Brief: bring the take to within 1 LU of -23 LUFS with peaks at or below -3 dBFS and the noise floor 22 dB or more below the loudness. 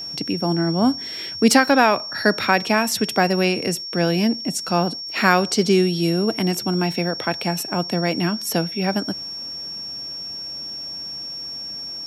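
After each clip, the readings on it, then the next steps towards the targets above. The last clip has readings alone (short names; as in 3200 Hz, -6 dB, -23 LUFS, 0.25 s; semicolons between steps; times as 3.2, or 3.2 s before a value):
ticks 22/s; steady tone 5500 Hz; tone level -29 dBFS; loudness -21.0 LUFS; peak -1.0 dBFS; loudness target -23.0 LUFS
-> de-click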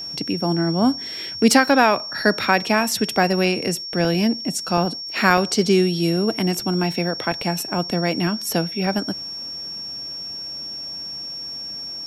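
ticks 0.17/s; steady tone 5500 Hz; tone level -29 dBFS
-> notch 5500 Hz, Q 30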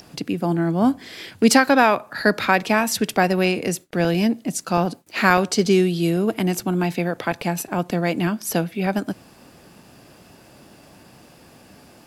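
steady tone none; loudness -20.5 LUFS; peak -1.5 dBFS; loudness target -23.0 LUFS
-> gain -2.5 dB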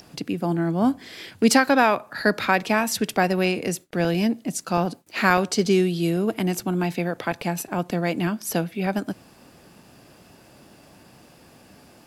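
loudness -23.0 LUFS; peak -4.0 dBFS; noise floor -52 dBFS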